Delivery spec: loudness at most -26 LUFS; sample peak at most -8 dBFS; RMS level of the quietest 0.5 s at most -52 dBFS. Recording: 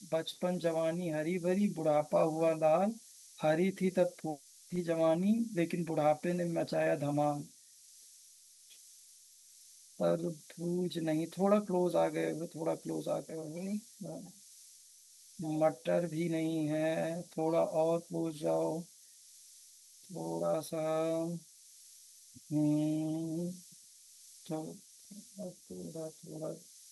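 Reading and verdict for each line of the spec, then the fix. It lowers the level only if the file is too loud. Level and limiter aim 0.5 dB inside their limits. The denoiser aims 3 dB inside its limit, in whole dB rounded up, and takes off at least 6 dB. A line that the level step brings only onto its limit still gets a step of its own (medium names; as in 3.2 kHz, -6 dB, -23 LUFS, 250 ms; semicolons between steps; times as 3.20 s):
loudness -34.0 LUFS: pass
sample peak -16.0 dBFS: pass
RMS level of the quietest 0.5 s -60 dBFS: pass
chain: none needed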